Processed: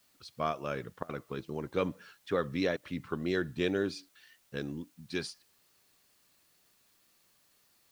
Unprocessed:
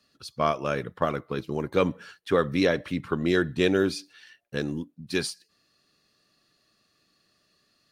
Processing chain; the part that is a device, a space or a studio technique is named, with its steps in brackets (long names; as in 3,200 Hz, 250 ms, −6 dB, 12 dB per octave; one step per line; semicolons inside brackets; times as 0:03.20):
worn cassette (low-pass filter 7,300 Hz; tape wow and flutter; tape dropouts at 0:01.03/0:02.77/0:04.09, 60 ms −21 dB; white noise bed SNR 32 dB)
level −8 dB